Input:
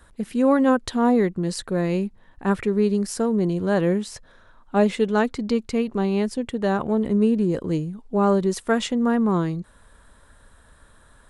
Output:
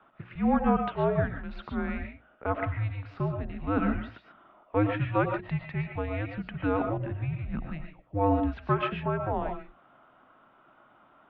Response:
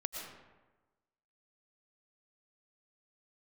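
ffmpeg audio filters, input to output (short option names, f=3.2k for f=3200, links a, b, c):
-filter_complex "[0:a]highpass=f=460:t=q:w=0.5412,highpass=f=460:t=q:w=1.307,lowpass=f=3k:t=q:w=0.5176,lowpass=f=3k:t=q:w=0.7071,lowpass=f=3k:t=q:w=1.932,afreqshift=-310,bandreject=f=60:t=h:w=6,bandreject=f=120:t=h:w=6,bandreject=f=180:t=h:w=6,bandreject=f=240:t=h:w=6,bandreject=f=300:t=h:w=6,bandreject=f=360:t=h:w=6[a];[1:a]atrim=start_sample=2205,afade=t=out:st=0.2:d=0.01,atrim=end_sample=9261[b];[a][b]afir=irnorm=-1:irlink=0"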